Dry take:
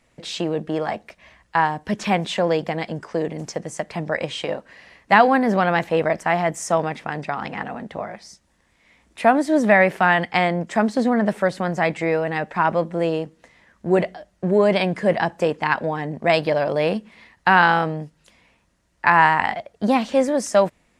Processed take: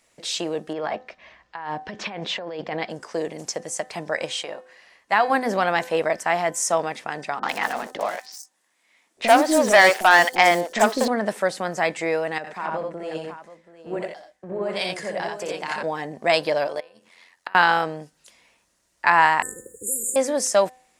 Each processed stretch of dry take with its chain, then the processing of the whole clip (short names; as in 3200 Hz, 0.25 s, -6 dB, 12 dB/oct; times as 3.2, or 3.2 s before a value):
0.73–2.9 negative-ratio compressor -26 dBFS + air absorption 210 m
4.43–5.3 bell 1200 Hz +4.5 dB 2.3 oct + resonator 360 Hz, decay 0.59 s
7.39–11.08 HPF 260 Hz + sample leveller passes 2 + three bands offset in time lows, mids, highs 40/100 ms, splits 450/5500 Hz
12.38–15.83 compressor 4:1, threshold -24 dBFS + tapped delay 62/87/730 ms -6/-4/-7 dB + three-band expander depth 100%
16.67–17.55 low shelf 240 Hz -11.5 dB + flipped gate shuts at -13 dBFS, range -25 dB + AM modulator 88 Hz, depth 50%
19.42–20.16 brick-wall FIR band-stop 530–6800 Hz + low shelf 390 Hz -7.5 dB + spectral compressor 4:1
whole clip: tone controls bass -11 dB, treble +9 dB; de-hum 254.8 Hz, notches 7; gain -1.5 dB